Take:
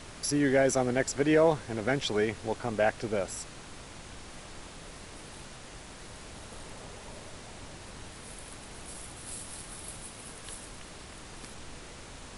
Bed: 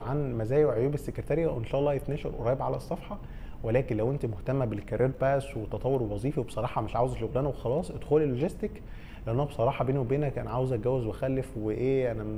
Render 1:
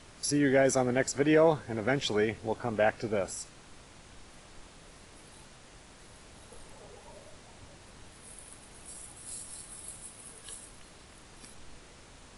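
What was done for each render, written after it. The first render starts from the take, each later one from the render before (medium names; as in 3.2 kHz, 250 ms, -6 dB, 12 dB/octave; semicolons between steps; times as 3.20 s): noise print and reduce 7 dB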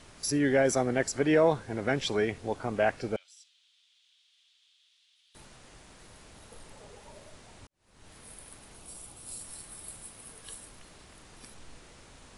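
3.16–5.35 s: ladder band-pass 3.7 kHz, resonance 65%; 7.67–8.12 s: fade in quadratic; 8.76–9.41 s: peaking EQ 1.8 kHz -6.5 dB 0.51 oct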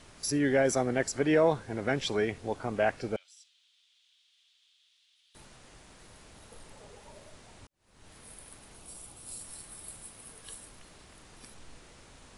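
trim -1 dB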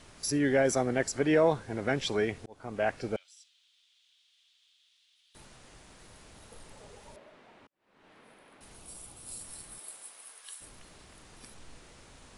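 2.46–3.14 s: fade in equal-power; 7.16–8.61 s: three-band isolator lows -22 dB, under 180 Hz, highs -21 dB, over 3.3 kHz; 9.78–10.60 s: high-pass 350 Hz -> 1.2 kHz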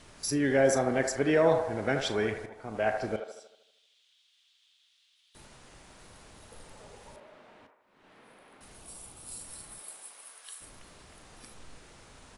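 doubling 37 ms -13 dB; on a send: feedback echo behind a band-pass 78 ms, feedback 53%, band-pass 900 Hz, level -4.5 dB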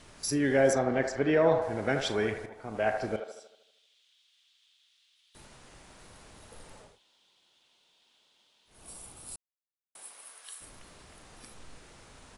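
0.73–1.62 s: distance through air 110 m; 6.88–8.77 s: room tone, crossfade 0.24 s; 9.36–9.95 s: mute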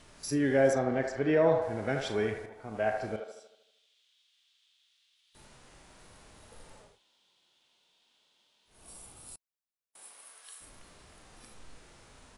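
harmonic-percussive split percussive -7 dB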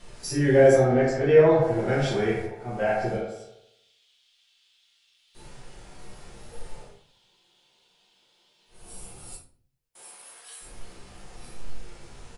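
doubling 15 ms -13 dB; simulated room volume 42 m³, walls mixed, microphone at 1.1 m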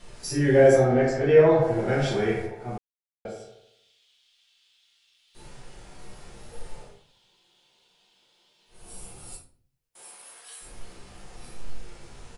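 2.78–3.25 s: mute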